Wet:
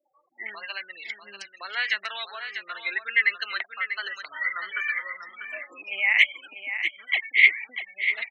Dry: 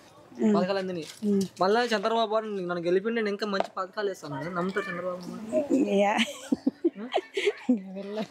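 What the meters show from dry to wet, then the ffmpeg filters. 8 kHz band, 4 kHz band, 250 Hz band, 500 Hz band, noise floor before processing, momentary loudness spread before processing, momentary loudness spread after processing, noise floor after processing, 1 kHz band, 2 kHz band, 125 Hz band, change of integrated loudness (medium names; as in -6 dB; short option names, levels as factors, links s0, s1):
under -10 dB, +4.0 dB, under -30 dB, -22.0 dB, -53 dBFS, 9 LU, 18 LU, -63 dBFS, -8.5 dB, +13.0 dB, under -35 dB, +3.5 dB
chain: -filter_complex "[0:a]asplit=2[s0][s1];[s1]adynamicsmooth=sensitivity=3.5:basefreq=3700,volume=0.841[s2];[s0][s2]amix=inputs=2:normalize=0,alimiter=limit=0.2:level=0:latency=1:release=483,afftfilt=real='re*gte(hypot(re,im),0.0141)':imag='im*gte(hypot(re,im),0.0141)':win_size=1024:overlap=0.75,highpass=f=2100:t=q:w=8.7,aecho=1:1:643:0.355"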